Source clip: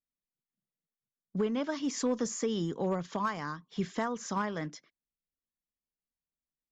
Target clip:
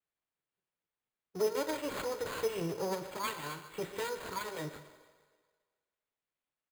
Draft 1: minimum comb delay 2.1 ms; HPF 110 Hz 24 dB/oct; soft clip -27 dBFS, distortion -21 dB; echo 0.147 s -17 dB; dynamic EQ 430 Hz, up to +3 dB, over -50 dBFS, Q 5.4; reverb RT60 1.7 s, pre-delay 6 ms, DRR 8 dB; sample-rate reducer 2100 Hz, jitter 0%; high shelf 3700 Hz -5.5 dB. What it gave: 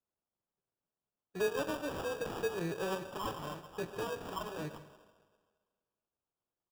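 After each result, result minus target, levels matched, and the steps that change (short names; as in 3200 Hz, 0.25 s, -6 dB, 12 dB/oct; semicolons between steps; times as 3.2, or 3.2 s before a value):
soft clip: distortion +13 dB; sample-rate reducer: distortion +7 dB; 8000 Hz band -3.5 dB
change: soft clip -19.5 dBFS, distortion -34 dB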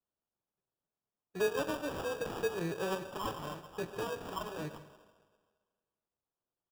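sample-rate reducer: distortion +7 dB; 8000 Hz band -3.5 dB
change: sample-rate reducer 5600 Hz, jitter 0%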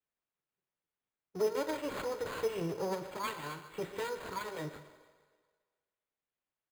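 8000 Hz band -4.0 dB
remove: high shelf 3700 Hz -5.5 dB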